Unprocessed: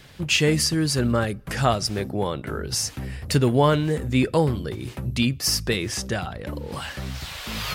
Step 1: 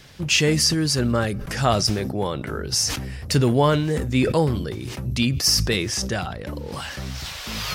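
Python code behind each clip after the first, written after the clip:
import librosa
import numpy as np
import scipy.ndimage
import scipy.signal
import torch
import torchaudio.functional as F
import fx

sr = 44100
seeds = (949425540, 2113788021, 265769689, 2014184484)

y = fx.peak_eq(x, sr, hz=5600.0, db=5.5, octaves=0.54)
y = fx.sustainer(y, sr, db_per_s=46.0)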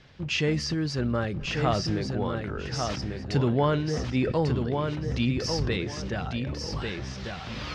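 y = fx.air_absorb(x, sr, metres=170.0)
y = fx.echo_feedback(y, sr, ms=1145, feedback_pct=22, wet_db=-5)
y = F.gain(torch.from_numpy(y), -5.5).numpy()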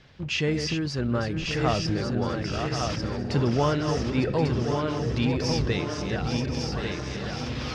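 y = fx.reverse_delay_fb(x, sr, ms=539, feedback_pct=71, wet_db=-7.0)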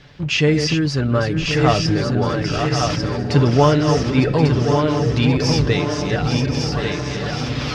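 y = x + 0.42 * np.pad(x, (int(6.9 * sr / 1000.0), 0))[:len(x)]
y = F.gain(torch.from_numpy(y), 7.5).numpy()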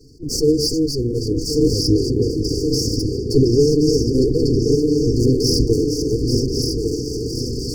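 y = fx.lower_of_two(x, sr, delay_ms=2.7)
y = fx.brickwall_bandstop(y, sr, low_hz=520.0, high_hz=4400.0)
y = fx.attack_slew(y, sr, db_per_s=350.0)
y = F.gain(torch.from_numpy(y), 4.0).numpy()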